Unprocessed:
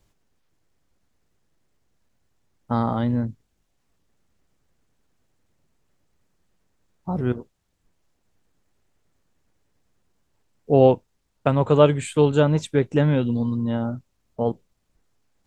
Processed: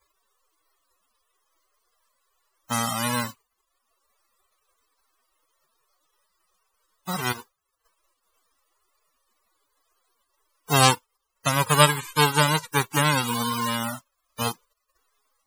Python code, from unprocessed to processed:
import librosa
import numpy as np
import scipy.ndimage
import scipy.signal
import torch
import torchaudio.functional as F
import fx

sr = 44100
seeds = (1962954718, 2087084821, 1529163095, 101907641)

y = fx.envelope_flatten(x, sr, power=0.1)
y = fx.peak_eq(y, sr, hz=1100.0, db=6.0, octaves=0.42)
y = fx.spec_topn(y, sr, count=64)